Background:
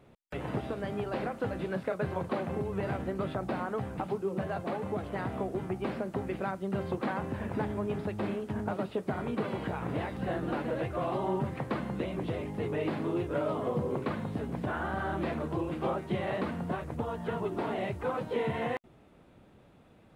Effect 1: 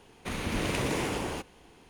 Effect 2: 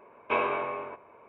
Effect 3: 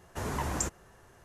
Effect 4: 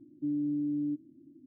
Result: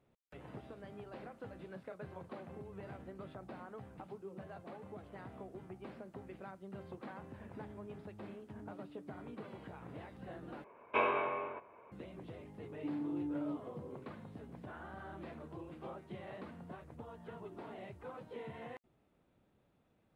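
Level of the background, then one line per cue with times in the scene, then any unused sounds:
background −15.5 dB
0:08.39: mix in 4 −14.5 dB + downward compressor, threshold −40 dBFS
0:10.64: overwrite with 2 −4.5 dB
0:12.61: mix in 4 −6 dB + soft clipping −27.5 dBFS
not used: 1, 3

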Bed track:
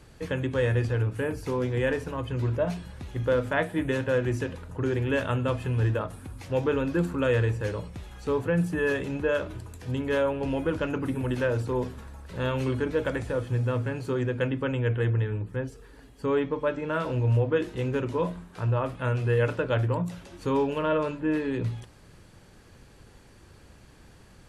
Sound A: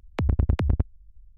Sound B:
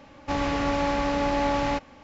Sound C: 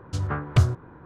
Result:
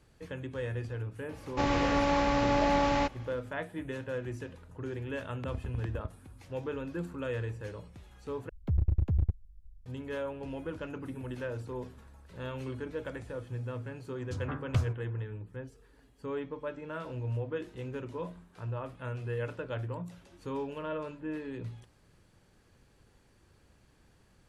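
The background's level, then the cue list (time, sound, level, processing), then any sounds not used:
bed track −11 dB
0:01.29: mix in B −2 dB
0:05.25: mix in A −16 dB + high-pass filter 45 Hz
0:08.49: overwrite with A −2.5 dB + slew-rate limiting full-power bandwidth 9.5 Hz
0:14.18: mix in C −10.5 dB

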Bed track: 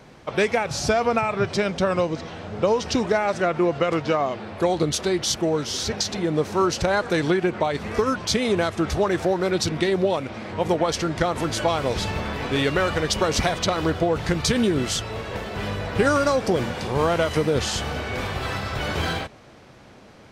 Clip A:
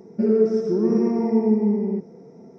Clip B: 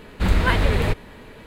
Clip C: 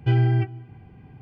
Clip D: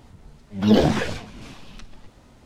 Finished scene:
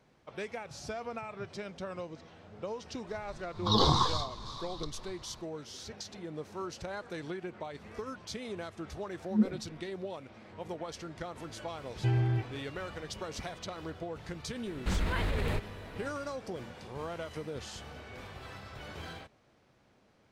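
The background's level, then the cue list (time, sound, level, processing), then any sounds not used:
bed track −18.5 dB
0:03.04: mix in D −3.5 dB, fades 0.10 s + drawn EQ curve 140 Hz 0 dB, 210 Hz −13 dB, 400 Hz −6 dB, 640 Hz −12 dB, 1,100 Hz +15 dB, 1,500 Hz −11 dB, 2,600 Hz −22 dB, 3,700 Hz +12 dB, 11,000 Hz −10 dB
0:08.68: mix in D −13 dB + every bin expanded away from the loudest bin 2.5 to 1
0:11.97: mix in C −9 dB
0:14.66: mix in B −7 dB + brickwall limiter −15.5 dBFS
not used: A

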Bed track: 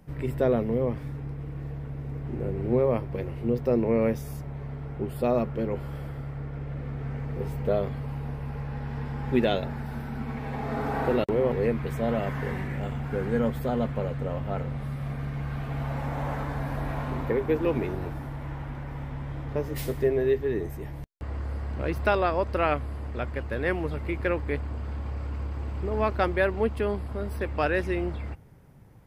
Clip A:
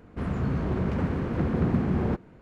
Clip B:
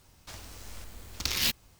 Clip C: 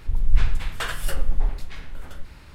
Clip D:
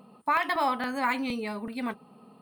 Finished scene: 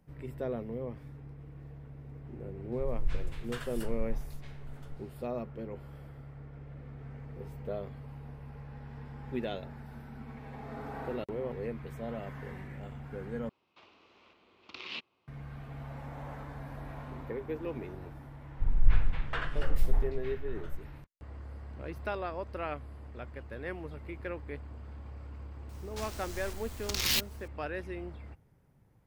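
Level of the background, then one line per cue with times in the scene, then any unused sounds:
bed track −12 dB
0:02.72: mix in C −14 dB
0:13.49: overwrite with B −11 dB + loudspeaker in its box 240–3,600 Hz, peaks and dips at 370 Hz +7 dB, 1,100 Hz +6 dB, 1,700 Hz −7 dB, 2,600 Hz +6 dB
0:18.53: mix in C −5 dB, fades 0.10 s + low-pass filter 2,400 Hz
0:25.69: mix in B −14.5 dB + boost into a limiter +16 dB
not used: A, D

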